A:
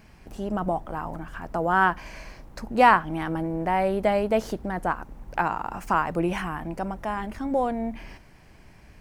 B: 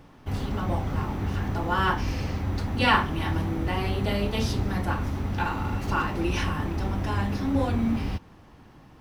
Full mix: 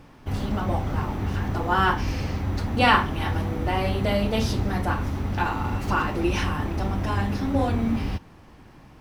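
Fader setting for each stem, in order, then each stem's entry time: -6.0, +1.5 dB; 0.00, 0.00 s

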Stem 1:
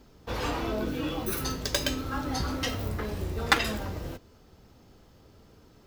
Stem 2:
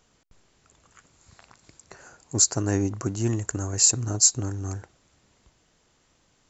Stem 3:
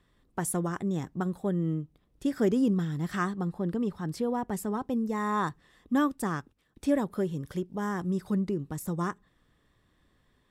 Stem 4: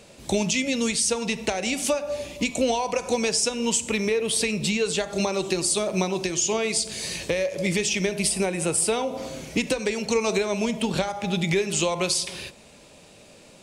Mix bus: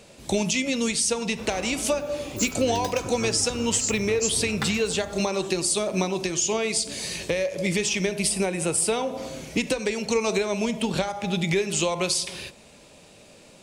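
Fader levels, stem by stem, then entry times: -9.0, -9.5, -19.0, -0.5 dB; 1.10, 0.00, 0.00, 0.00 s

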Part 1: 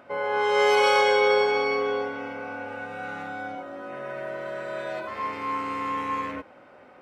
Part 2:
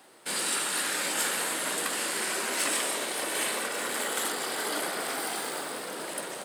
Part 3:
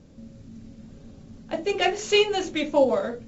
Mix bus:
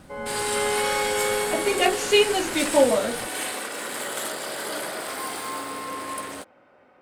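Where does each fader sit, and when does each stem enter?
-5.5, -0.5, +1.5 dB; 0.00, 0.00, 0.00 s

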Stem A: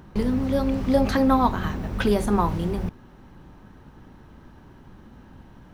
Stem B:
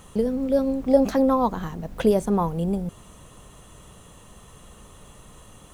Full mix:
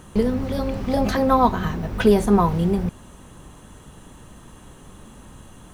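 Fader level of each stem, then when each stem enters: +1.0, -0.5 dB; 0.00, 0.00 s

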